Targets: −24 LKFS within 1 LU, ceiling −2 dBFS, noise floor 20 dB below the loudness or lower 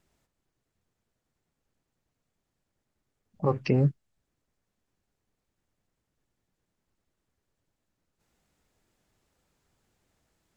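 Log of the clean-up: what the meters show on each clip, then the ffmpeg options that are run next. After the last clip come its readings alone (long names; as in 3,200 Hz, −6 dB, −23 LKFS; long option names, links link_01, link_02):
integrated loudness −27.0 LKFS; sample peak −11.5 dBFS; target loudness −24.0 LKFS
→ -af "volume=3dB"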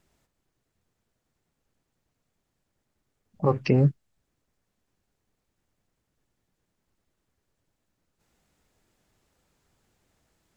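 integrated loudness −24.0 LKFS; sample peak −8.5 dBFS; background noise floor −80 dBFS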